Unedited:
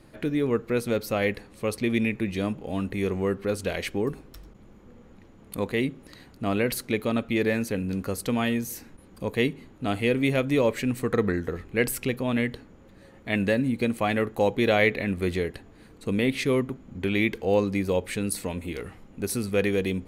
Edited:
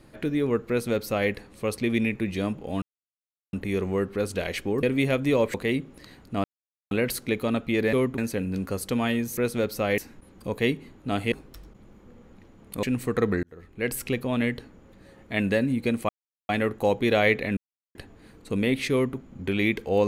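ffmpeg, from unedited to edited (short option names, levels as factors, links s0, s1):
-filter_complex "[0:a]asplit=15[s0][s1][s2][s3][s4][s5][s6][s7][s8][s9][s10][s11][s12][s13][s14];[s0]atrim=end=2.82,asetpts=PTS-STARTPTS,afade=t=out:st=2.816:d=0.004:c=hsin,apad=pad_dur=0.71[s15];[s1]atrim=start=2.82:end=4.122,asetpts=PTS-STARTPTS,afade=t=in:d=0.004:c=hsin[s16];[s2]atrim=start=10.078:end=10.792[s17];[s3]atrim=start=5.628:end=6.53,asetpts=PTS-STARTPTS,afade=t=out:st=0.898:d=0.004:c=hsin,apad=pad_dur=0.47[s18];[s4]atrim=start=6.53:end=7.552,asetpts=PTS-STARTPTS,afade=t=in:d=0.004:c=hsin[s19];[s5]atrim=start=16.478:end=16.732[s20];[s6]atrim=start=7.548:end=8.742[s21];[s7]atrim=start=0.688:end=1.302[s22];[s8]atrim=start=8.738:end=10.082[s23];[s9]atrim=start=4.118:end=5.632[s24];[s10]atrim=start=10.788:end=11.39,asetpts=PTS-STARTPTS,afade=t=out:st=0.598:d=0.004:c=hsin[s25];[s11]atrim=start=11.39:end=14.05,asetpts=PTS-STARTPTS,afade=t=in:d=0.67,afade=t=out:st=2.656:d=0.004:c=hsin,apad=pad_dur=0.4[s26];[s12]atrim=start=14.05:end=15.13,asetpts=PTS-STARTPTS,afade=t=in:d=0.004:c=hsin,afade=t=out:st=1.076:d=0.004:c=hsin[s27];[s13]atrim=start=15.13:end=15.51,asetpts=PTS-STARTPTS,volume=0[s28];[s14]atrim=start=15.51,asetpts=PTS-STARTPTS,afade=t=in:d=0.004:c=hsin[s29];[s15][s16]concat=n=2:v=0:a=1[s30];[s30][s17]acrossfade=d=0.004:c1=hsin:c2=hsin[s31];[s18][s19]concat=n=2:v=0:a=1[s32];[s31][s32]acrossfade=d=0.004:c1=hsin:c2=hsin[s33];[s33][s20]acrossfade=d=0.004:c1=hsin:c2=hsin[s34];[s34][s21]acrossfade=d=0.004:c1=hsin:c2=hsin[s35];[s35][s22]acrossfade=d=0.004:c1=hsin:c2=hsin[s36];[s36][s23]acrossfade=d=0.004:c1=hsin:c2=hsin[s37];[s37][s24]acrossfade=d=0.004:c1=hsin:c2=hsin[s38];[s25][s26][s27][s28][s29]concat=n=5:v=0:a=1[s39];[s38][s39]acrossfade=d=0.004:c1=hsin:c2=hsin"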